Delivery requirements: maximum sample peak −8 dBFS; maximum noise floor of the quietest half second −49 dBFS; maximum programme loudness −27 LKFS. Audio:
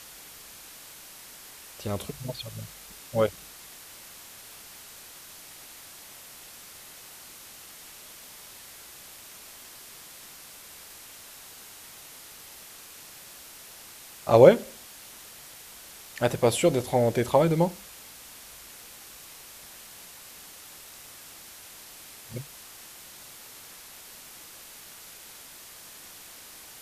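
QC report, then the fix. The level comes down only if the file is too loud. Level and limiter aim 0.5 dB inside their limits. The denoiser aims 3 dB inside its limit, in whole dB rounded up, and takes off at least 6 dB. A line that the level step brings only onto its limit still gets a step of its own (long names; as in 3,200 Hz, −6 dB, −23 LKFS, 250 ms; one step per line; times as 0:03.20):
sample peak −3.0 dBFS: out of spec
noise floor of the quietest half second −47 dBFS: out of spec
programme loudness −24.5 LKFS: out of spec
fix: level −3 dB
brickwall limiter −8.5 dBFS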